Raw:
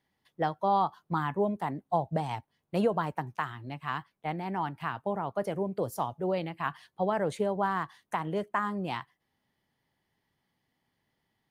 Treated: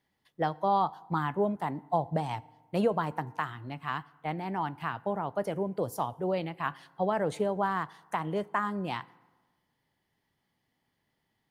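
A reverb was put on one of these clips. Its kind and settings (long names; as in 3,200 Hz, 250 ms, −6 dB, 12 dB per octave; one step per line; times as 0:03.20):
feedback delay network reverb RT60 1.3 s, low-frequency decay 0.95×, high-frequency decay 0.6×, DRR 20 dB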